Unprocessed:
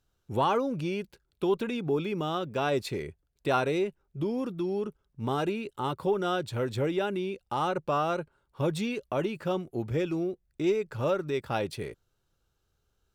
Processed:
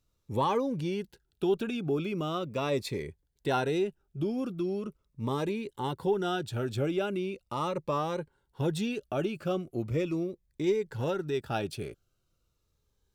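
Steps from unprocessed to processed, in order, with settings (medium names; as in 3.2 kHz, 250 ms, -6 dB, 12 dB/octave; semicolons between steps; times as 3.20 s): Shepard-style phaser falling 0.4 Hz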